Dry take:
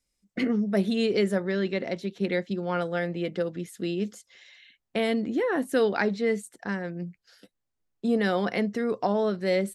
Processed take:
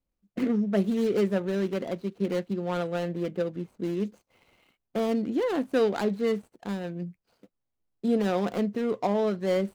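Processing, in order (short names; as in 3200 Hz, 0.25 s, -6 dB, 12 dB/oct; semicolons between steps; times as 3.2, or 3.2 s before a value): median filter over 25 samples; 3.12–3.98 mismatched tape noise reduction decoder only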